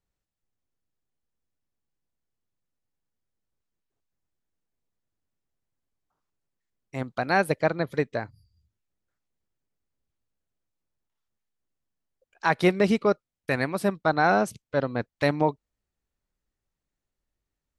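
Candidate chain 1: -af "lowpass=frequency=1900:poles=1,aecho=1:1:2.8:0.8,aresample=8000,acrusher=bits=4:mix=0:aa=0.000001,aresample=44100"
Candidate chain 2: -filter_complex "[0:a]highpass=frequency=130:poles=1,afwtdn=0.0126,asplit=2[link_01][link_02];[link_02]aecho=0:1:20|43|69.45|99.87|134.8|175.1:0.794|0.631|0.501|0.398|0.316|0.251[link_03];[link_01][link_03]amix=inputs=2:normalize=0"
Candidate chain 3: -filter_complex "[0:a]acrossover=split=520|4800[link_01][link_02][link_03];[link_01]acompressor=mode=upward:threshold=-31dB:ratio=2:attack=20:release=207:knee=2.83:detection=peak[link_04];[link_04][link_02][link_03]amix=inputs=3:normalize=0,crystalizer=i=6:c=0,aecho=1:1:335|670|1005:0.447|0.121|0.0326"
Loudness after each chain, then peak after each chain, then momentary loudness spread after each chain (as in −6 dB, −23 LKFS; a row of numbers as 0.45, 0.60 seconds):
−24.0, −22.0, −22.5 LKFS; −6.5, −2.5, −4.0 dBFS; 11, 12, 15 LU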